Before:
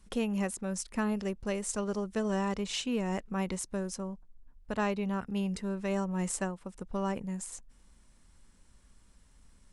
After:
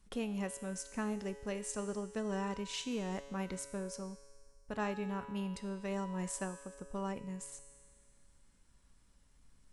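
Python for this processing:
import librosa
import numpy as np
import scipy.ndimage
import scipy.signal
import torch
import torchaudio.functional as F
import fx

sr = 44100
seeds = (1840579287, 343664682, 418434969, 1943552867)

y = fx.comb_fb(x, sr, f0_hz=140.0, decay_s=1.9, harmonics='all', damping=0.0, mix_pct=80)
y = F.gain(torch.from_numpy(y), 7.0).numpy()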